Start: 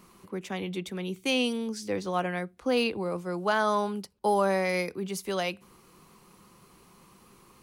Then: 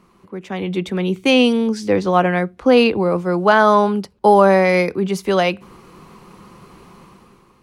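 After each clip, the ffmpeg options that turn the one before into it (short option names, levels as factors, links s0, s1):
-af "lowpass=f=2300:p=1,dynaudnorm=f=140:g=9:m=3.76,volume=1.41"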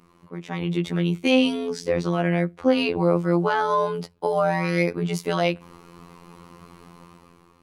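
-af "alimiter=limit=0.355:level=0:latency=1:release=85,afftfilt=real='hypot(re,im)*cos(PI*b)':imag='0':win_size=2048:overlap=0.75"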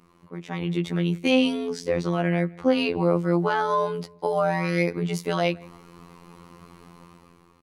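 -filter_complex "[0:a]asplit=2[s0][s1];[s1]adelay=163,lowpass=f=2900:p=1,volume=0.0631,asplit=2[s2][s3];[s3]adelay=163,lowpass=f=2900:p=1,volume=0.39[s4];[s0][s2][s4]amix=inputs=3:normalize=0,volume=0.841"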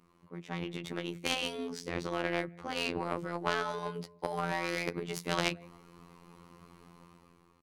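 -af "afftfilt=real='re*lt(hypot(re,im),0.447)':imag='im*lt(hypot(re,im),0.447)':win_size=1024:overlap=0.75,aeval=exprs='0.355*(cos(1*acos(clip(val(0)/0.355,-1,1)))-cos(1*PI/2))+0.0708*(cos(3*acos(clip(val(0)/0.355,-1,1)))-cos(3*PI/2))':c=same"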